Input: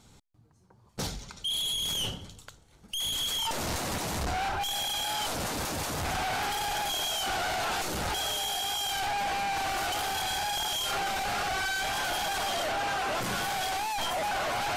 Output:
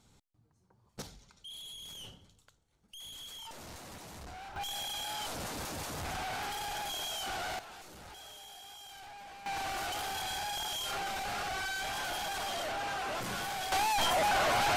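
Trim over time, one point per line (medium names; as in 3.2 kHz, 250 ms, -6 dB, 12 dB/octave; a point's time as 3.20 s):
-8 dB
from 1.02 s -16 dB
from 4.56 s -7 dB
from 7.59 s -19 dB
from 9.46 s -6 dB
from 13.72 s +2 dB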